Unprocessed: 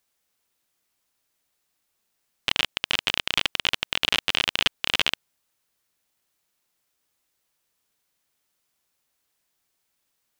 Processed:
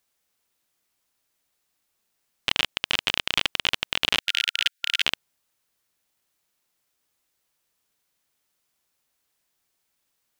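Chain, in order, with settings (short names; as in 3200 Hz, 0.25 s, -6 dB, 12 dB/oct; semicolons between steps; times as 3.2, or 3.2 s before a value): 4.2–5.02 brick-wall FIR high-pass 1400 Hz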